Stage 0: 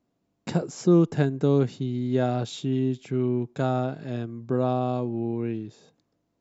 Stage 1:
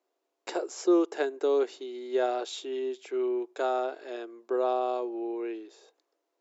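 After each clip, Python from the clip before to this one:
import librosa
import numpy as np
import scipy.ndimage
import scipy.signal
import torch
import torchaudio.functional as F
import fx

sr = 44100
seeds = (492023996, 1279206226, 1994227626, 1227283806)

y = scipy.signal.sosfilt(scipy.signal.ellip(4, 1.0, 60, 360.0, 'highpass', fs=sr, output='sos'), x)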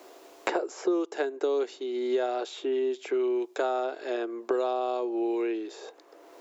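y = fx.band_squash(x, sr, depth_pct=100)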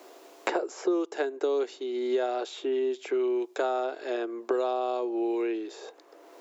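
y = scipy.signal.sosfilt(scipy.signal.butter(2, 130.0, 'highpass', fs=sr, output='sos'), x)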